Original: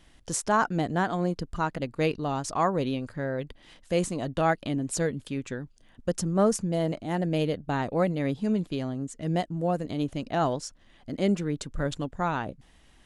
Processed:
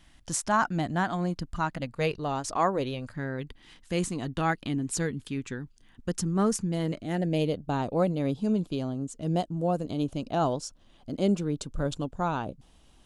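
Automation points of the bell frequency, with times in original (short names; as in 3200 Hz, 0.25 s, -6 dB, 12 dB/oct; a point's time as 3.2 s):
bell -12 dB 0.49 oct
1.74 s 450 Hz
2.67 s 120 Hz
3.23 s 590 Hz
6.77 s 590 Hz
7.58 s 1900 Hz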